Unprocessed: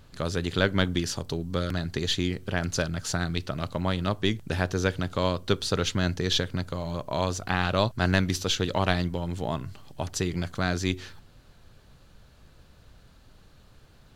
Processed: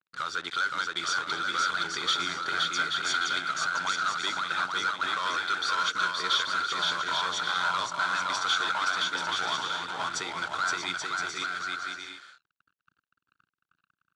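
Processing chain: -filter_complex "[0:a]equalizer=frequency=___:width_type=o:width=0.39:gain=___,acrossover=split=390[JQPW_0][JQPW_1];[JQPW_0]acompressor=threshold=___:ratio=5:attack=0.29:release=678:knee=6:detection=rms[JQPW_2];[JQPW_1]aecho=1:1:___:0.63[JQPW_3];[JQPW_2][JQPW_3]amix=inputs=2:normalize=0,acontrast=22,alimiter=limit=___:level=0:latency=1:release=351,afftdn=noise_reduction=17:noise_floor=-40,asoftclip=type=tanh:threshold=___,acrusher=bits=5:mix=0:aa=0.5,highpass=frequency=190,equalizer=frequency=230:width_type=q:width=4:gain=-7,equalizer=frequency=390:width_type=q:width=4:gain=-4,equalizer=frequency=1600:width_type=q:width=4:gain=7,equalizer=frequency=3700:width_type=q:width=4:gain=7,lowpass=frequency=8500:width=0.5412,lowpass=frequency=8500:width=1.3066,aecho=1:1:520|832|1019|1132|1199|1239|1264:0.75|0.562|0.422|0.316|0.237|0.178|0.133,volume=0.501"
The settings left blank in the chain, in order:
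1400, 14.5, 0.0112, 0.9, 0.282, 0.106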